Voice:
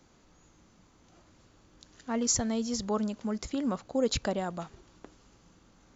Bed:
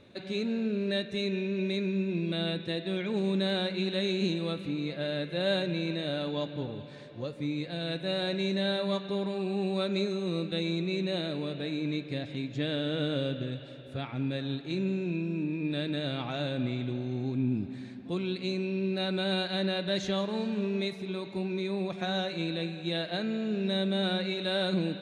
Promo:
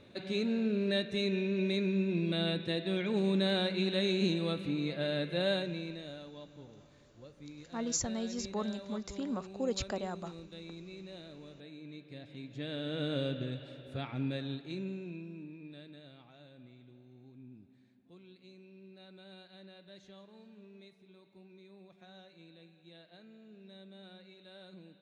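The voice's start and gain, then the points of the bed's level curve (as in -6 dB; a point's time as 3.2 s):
5.65 s, -6.0 dB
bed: 5.38 s -1 dB
6.32 s -16.5 dB
11.88 s -16.5 dB
13.19 s -3 dB
14.28 s -3 dB
16.31 s -24 dB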